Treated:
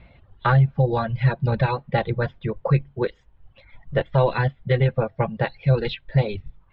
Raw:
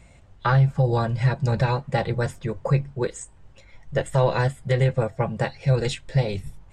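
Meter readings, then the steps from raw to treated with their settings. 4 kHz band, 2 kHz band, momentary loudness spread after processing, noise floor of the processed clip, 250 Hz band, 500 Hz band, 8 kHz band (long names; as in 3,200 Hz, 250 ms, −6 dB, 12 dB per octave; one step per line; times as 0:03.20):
−0.5 dB, +1.5 dB, 8 LU, −58 dBFS, +1.0 dB, +1.0 dB, below −35 dB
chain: reverb reduction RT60 0.93 s
Butterworth low-pass 4,000 Hz 48 dB per octave
level +2 dB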